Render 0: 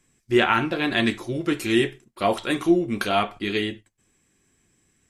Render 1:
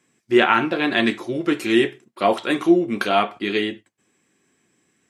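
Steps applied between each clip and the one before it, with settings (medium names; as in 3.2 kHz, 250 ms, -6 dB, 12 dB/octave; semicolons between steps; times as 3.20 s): high-pass 200 Hz 12 dB/octave; treble shelf 5.3 kHz -8.5 dB; trim +4 dB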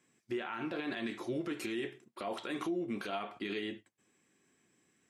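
compression 3:1, threshold -23 dBFS, peak gain reduction 10.5 dB; peak limiter -21 dBFS, peak gain reduction 11.5 dB; trim -7 dB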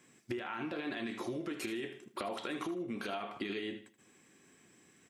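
compression 10:1, threshold -44 dBFS, peak gain reduction 13 dB; feedback delay 78 ms, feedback 30%, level -12.5 dB; trim +8.5 dB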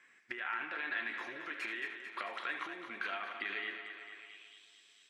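thinning echo 222 ms, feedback 66%, high-pass 190 Hz, level -9 dB; band-pass sweep 1.8 kHz -> 3.8 kHz, 4.11–4.65 s; trim +8.5 dB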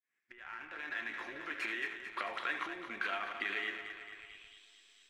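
fade-in on the opening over 1.63 s; in parallel at -9 dB: hysteresis with a dead band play -41 dBFS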